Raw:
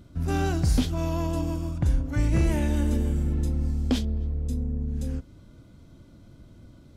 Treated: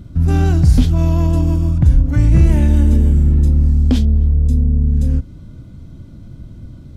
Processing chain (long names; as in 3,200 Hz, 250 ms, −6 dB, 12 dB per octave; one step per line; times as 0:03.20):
bass and treble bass +11 dB, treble −1 dB
mains-hum notches 50/100 Hz
in parallel at 0 dB: brickwall limiter −15 dBFS, peak gain reduction 11.5 dB